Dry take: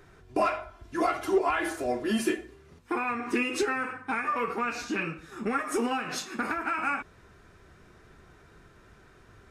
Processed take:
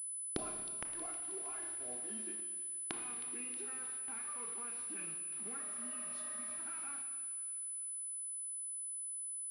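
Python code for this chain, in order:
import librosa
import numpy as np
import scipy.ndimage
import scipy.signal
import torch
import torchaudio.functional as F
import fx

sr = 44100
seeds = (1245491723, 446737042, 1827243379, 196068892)

y = fx.spec_repair(x, sr, seeds[0], start_s=5.68, length_s=0.89, low_hz=270.0, high_hz=2100.0, source='before')
y = fx.rider(y, sr, range_db=4, speed_s=0.5)
y = fx.quant_dither(y, sr, seeds[1], bits=6, dither='none')
y = fx.gate_flip(y, sr, shuts_db=-35.0, range_db=-36)
y = fx.echo_wet_highpass(y, sr, ms=316, feedback_pct=65, hz=3000.0, wet_db=-10.5)
y = fx.rev_schroeder(y, sr, rt60_s=1.7, comb_ms=25, drr_db=5.5)
y = fx.pwm(y, sr, carrier_hz=10000.0)
y = y * librosa.db_to_amplitude(12.0)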